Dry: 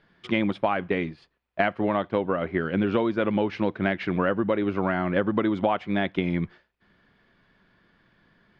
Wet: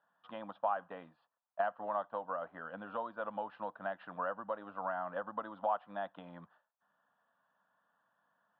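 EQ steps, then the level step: band-pass 540–3700 Hz; distance through air 450 m; static phaser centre 910 Hz, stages 4; -4.0 dB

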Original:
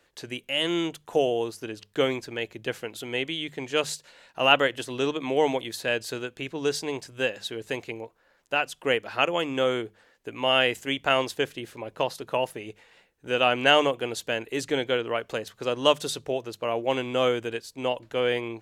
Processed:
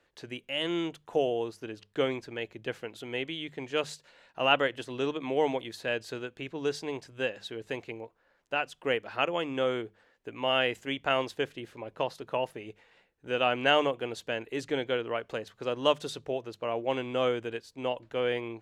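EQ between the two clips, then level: treble shelf 6 kHz -12 dB; -4.0 dB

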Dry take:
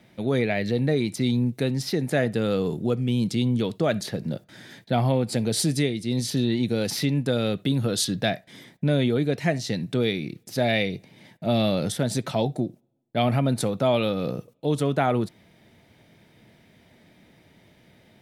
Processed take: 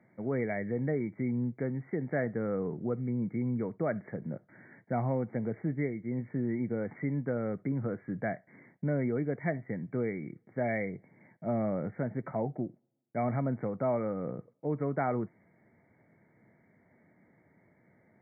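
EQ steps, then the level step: high-pass 100 Hz; brick-wall FIR low-pass 2.3 kHz; -8.0 dB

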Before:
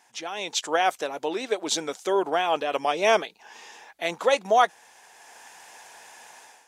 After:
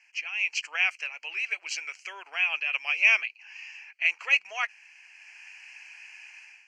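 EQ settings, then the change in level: resonant high-pass 2.5 kHz, resonance Q 5.4; Butterworth band-stop 3.6 kHz, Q 2.3; distance through air 140 m; 0.0 dB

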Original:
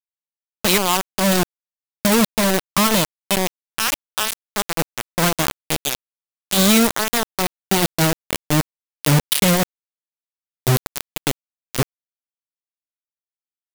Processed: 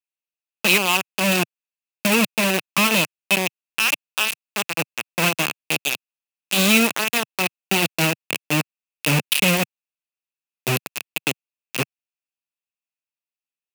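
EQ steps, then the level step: high-pass 140 Hz 24 dB/octave; peaking EQ 2.6 kHz +15 dB 0.31 oct; -3.5 dB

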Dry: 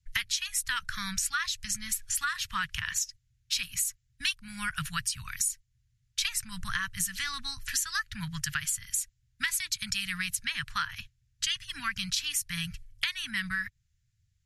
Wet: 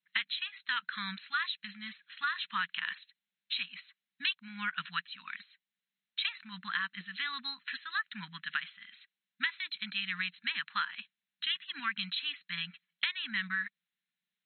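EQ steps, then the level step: brick-wall FIR band-pass 180–4200 Hz; Butterworth band-stop 640 Hz, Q 6.5; -1.5 dB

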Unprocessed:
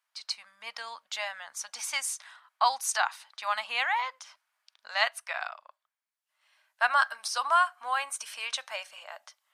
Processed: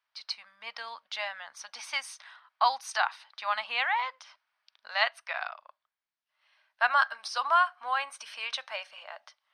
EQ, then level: Savitzky-Golay filter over 15 samples; 0.0 dB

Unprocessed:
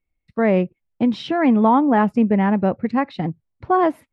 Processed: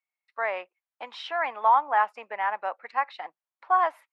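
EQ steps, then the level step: high-pass 860 Hz 24 dB/octave; treble shelf 2.5 kHz -11 dB; +2.0 dB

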